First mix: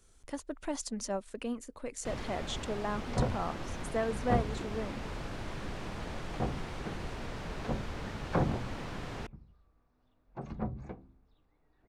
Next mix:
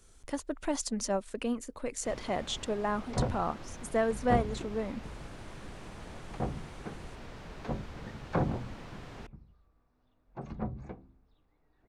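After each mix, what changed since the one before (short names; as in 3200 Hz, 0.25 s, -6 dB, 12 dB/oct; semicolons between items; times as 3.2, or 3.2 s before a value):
speech +4.0 dB; first sound -6.0 dB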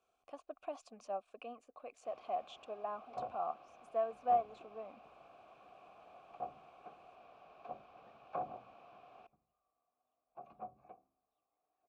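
master: add vowel filter a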